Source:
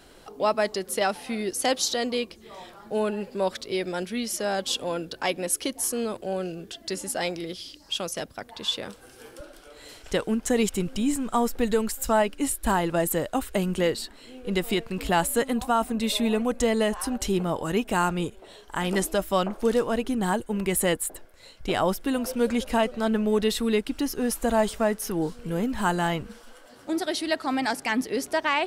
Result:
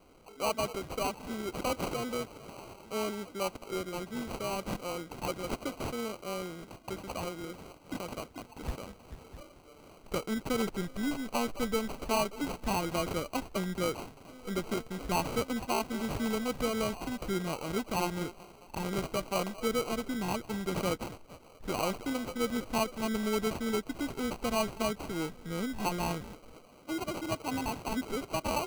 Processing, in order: delay with a stepping band-pass 0.219 s, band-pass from 1700 Hz, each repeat 0.7 oct, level -6 dB; sample-and-hold 25×; gain -8 dB

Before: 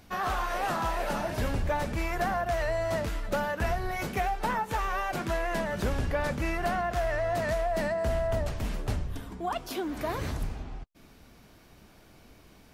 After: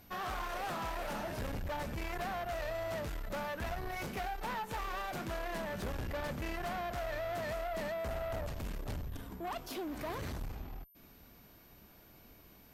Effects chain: tube stage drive 32 dB, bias 0.45; whine 13000 Hz -59 dBFS; gain -3 dB

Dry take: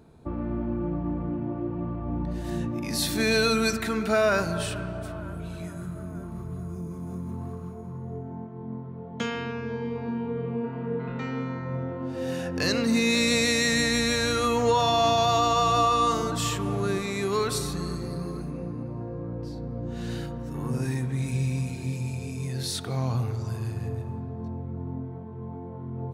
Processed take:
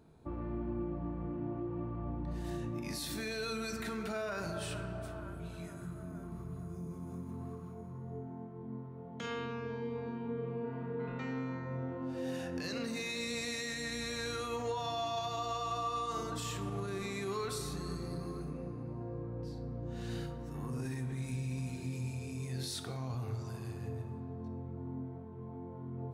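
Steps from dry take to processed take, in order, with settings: de-hum 46.16 Hz, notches 14; limiter -23 dBFS, peak gain reduction 11 dB; on a send: reverb RT60 0.75 s, pre-delay 7 ms, DRR 8.5 dB; on the sum: gain -7.5 dB

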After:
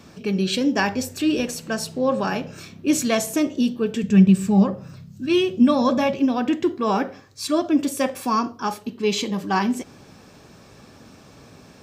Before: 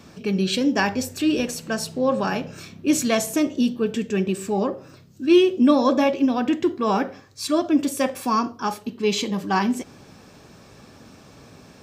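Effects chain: 4.03–6.19 resonant low shelf 240 Hz +7 dB, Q 3

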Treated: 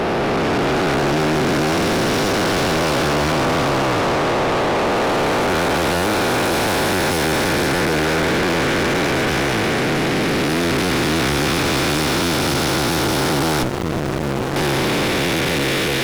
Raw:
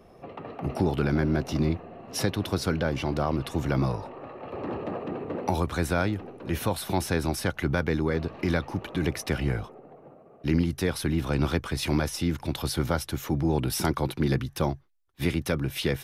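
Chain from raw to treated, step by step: time blur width 1.32 s; overdrive pedal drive 36 dB, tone 5000 Hz, clips at -18.5 dBFS; 13.63–14.56 running maximum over 33 samples; gain +7 dB

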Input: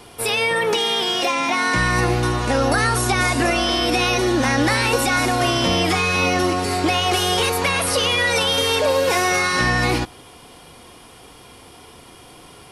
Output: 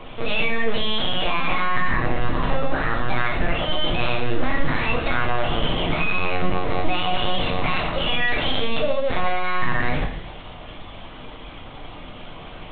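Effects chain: in parallel at -2 dB: limiter -13.5 dBFS, peak gain reduction 7 dB; on the sum: compressor, threshold -21 dBFS, peak gain reduction 10 dB; on a send: thinning echo 67 ms, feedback 70%, high-pass 610 Hz, level -10.5 dB; on the sum: LPC vocoder at 8 kHz pitch kept; shoebox room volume 62 m³, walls mixed, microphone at 0.56 m; gain -2 dB

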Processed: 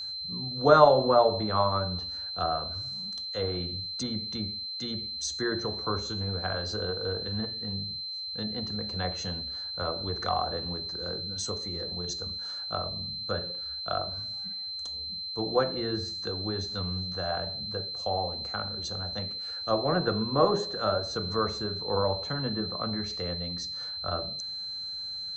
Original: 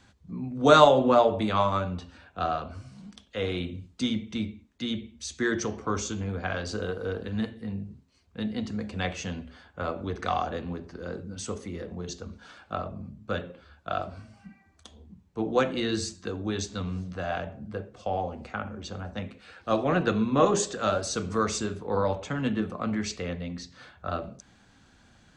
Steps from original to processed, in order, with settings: treble ducked by the level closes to 1800 Hz, closed at -25.5 dBFS; fifteen-band EQ 250 Hz -8 dB, 2500 Hz -11 dB, 6300 Hz +7 dB; whine 4100 Hz -34 dBFS

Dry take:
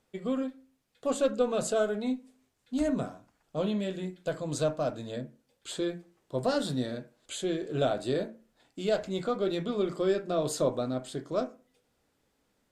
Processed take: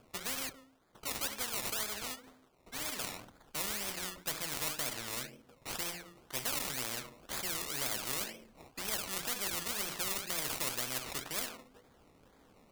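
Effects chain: 0.49–3.04 HPF 700 Hz 6 dB/oct; decimation with a swept rate 22×, swing 60% 2 Hz; spectral compressor 4:1

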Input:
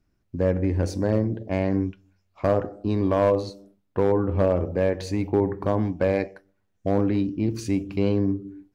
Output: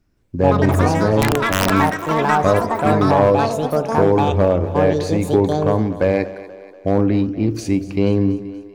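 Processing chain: echoes that change speed 0.167 s, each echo +7 st, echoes 3; 1.21–1.7 wrapped overs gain 13 dB; split-band echo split 300 Hz, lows 98 ms, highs 0.24 s, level -15.5 dB; gain +5.5 dB

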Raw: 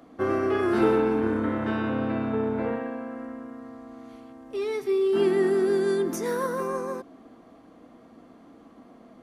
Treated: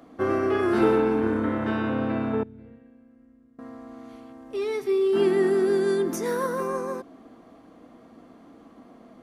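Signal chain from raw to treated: 2.43–3.59 passive tone stack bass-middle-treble 10-0-1; gain +1 dB

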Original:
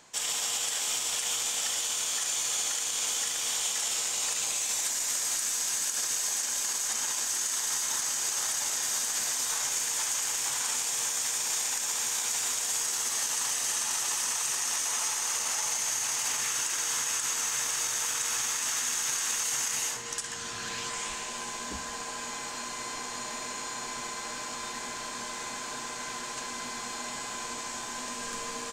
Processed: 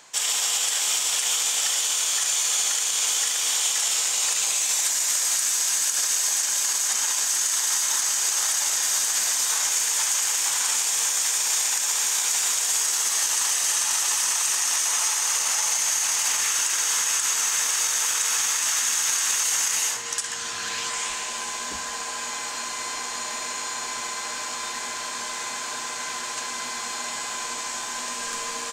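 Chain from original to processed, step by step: low shelf 430 Hz -11 dB; gain +7 dB

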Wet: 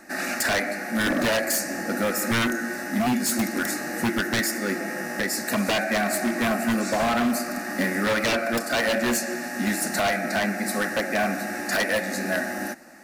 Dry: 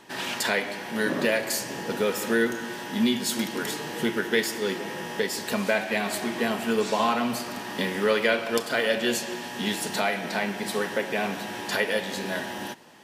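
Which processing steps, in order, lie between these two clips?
fixed phaser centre 650 Hz, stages 8; wavefolder -24 dBFS; gain +7 dB

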